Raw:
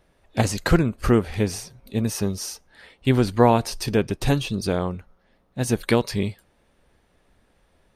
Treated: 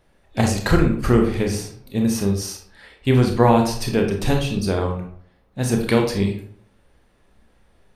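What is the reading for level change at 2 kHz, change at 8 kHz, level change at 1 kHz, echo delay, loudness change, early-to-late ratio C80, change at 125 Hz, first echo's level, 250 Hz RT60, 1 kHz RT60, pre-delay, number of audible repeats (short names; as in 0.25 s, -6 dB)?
+2.0 dB, +1.5 dB, +2.0 dB, none, +2.5 dB, 10.5 dB, +3.0 dB, none, 0.60 s, 0.55 s, 24 ms, none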